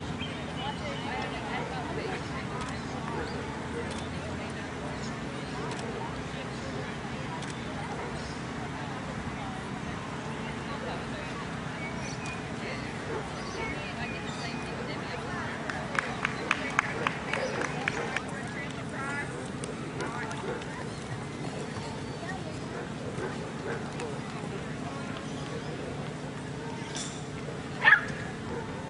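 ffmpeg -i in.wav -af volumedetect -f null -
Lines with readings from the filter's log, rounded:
mean_volume: -34.2 dB
max_volume: -5.2 dB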